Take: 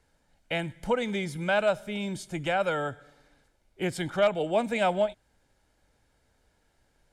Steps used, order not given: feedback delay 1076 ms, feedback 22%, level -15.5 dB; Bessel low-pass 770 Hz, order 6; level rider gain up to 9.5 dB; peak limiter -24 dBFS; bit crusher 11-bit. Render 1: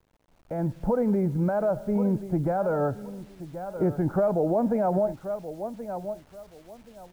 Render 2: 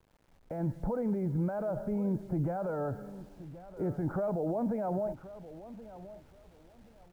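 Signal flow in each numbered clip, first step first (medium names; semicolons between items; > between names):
feedback delay > peak limiter > Bessel low-pass > bit crusher > level rider; level rider > peak limiter > Bessel low-pass > bit crusher > feedback delay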